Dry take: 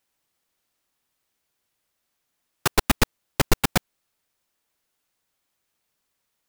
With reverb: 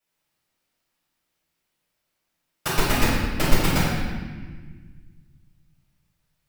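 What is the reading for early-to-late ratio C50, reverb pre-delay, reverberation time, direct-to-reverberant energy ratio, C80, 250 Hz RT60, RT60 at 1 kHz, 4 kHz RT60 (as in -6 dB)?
-1.5 dB, 3 ms, 1.5 s, -10.0 dB, 1.0 dB, 2.3 s, 1.4 s, 1.2 s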